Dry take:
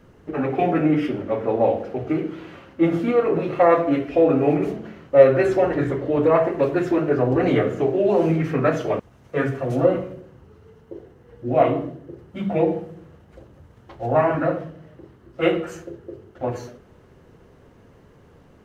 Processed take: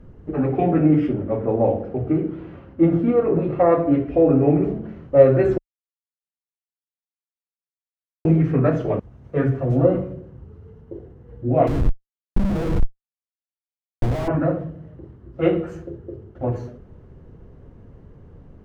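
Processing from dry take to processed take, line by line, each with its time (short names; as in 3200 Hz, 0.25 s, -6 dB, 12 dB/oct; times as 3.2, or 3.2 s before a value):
1.13–4.89 high shelf 5300 Hz -11 dB
5.58–8.25 mute
11.67–14.28 Schmitt trigger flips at -26.5 dBFS
whole clip: tilt -3.5 dB/oct; gain -3.5 dB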